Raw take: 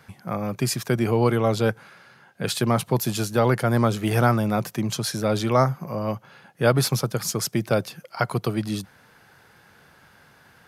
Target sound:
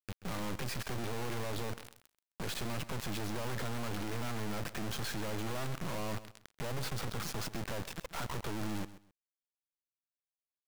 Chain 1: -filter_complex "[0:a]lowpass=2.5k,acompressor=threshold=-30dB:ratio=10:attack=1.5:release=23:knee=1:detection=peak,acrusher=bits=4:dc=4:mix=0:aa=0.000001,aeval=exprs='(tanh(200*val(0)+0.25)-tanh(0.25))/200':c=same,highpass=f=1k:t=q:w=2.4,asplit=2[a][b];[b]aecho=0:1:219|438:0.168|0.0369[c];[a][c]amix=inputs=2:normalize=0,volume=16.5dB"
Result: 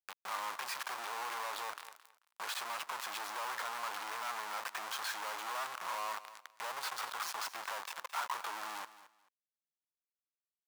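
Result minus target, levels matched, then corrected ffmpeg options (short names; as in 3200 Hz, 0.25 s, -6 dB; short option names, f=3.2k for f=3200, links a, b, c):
echo 88 ms late; 1000 Hz band +6.0 dB
-filter_complex "[0:a]lowpass=2.5k,acompressor=threshold=-30dB:ratio=10:attack=1.5:release=23:knee=1:detection=peak,acrusher=bits=4:dc=4:mix=0:aa=0.000001,aeval=exprs='(tanh(200*val(0)+0.25)-tanh(0.25))/200':c=same,asplit=2[a][b];[b]aecho=0:1:131|262:0.168|0.0369[c];[a][c]amix=inputs=2:normalize=0,volume=16.5dB"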